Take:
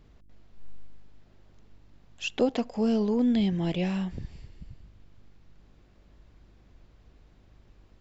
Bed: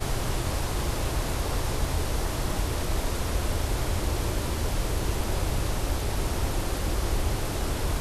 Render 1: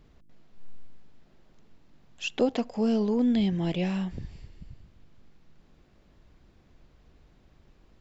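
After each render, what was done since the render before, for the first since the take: de-hum 50 Hz, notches 2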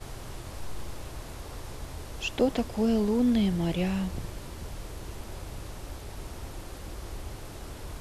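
add bed -12.5 dB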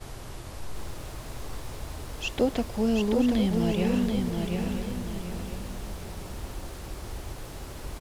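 delay 979 ms -11 dB; bit-crushed delay 733 ms, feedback 35%, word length 9-bit, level -4 dB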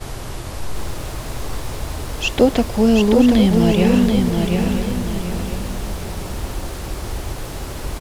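trim +11 dB

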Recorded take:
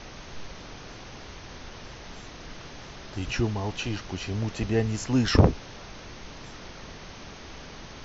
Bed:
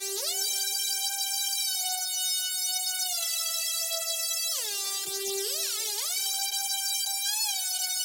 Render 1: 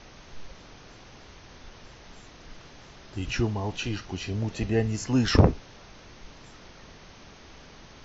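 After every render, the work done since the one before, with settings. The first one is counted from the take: noise print and reduce 6 dB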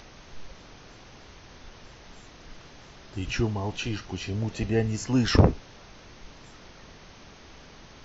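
upward compressor, threshold -48 dBFS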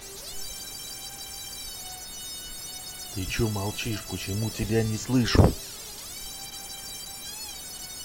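add bed -9.5 dB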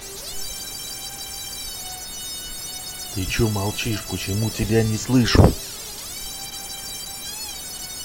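trim +6 dB; peak limiter -1 dBFS, peak gain reduction 1.5 dB

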